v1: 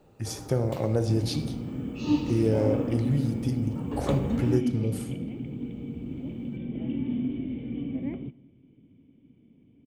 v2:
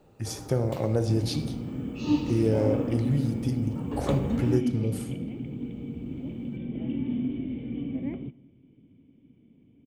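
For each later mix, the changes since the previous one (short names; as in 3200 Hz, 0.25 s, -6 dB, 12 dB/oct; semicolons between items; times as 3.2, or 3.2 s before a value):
none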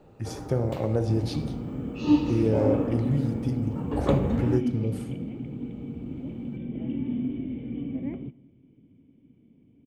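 first sound +4.5 dB; master: add high shelf 4000 Hz -9.5 dB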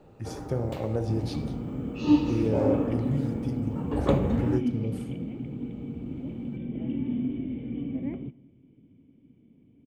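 speech -3.5 dB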